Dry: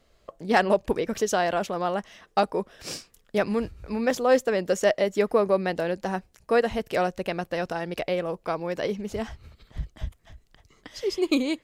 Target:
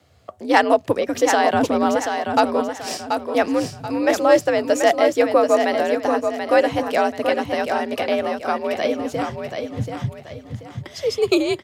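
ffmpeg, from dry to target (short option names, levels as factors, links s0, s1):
-filter_complex "[0:a]asettb=1/sr,asplit=3[s0][s1][s2];[s0]atrim=end=1.534[s3];[s1]atrim=start=1.53:end=1.95,asetpts=PTS-STARTPTS,afade=t=in:d=0.004:c=qsin,afade=t=out:st=0.416:d=0.004:c=qsin,bass=f=250:g=14,treble=f=4000:g=1[s4];[s2]atrim=start=1.946[s5];[s3][s4]acrossfade=d=0.004:c1=hsin:c2=qsin[s6];[s6][s5]acrossfade=d=0.004:c1=qsin:c2=hsin,afreqshift=65,aecho=1:1:733|1466|2199|2932:0.501|0.17|0.0579|0.0197,volume=1.88"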